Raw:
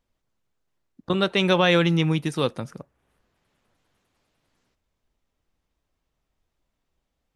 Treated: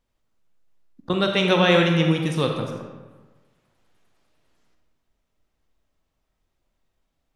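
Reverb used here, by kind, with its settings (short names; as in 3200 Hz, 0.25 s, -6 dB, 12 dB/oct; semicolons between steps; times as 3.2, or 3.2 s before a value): digital reverb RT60 1.3 s, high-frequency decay 0.65×, pre-delay 5 ms, DRR 2.5 dB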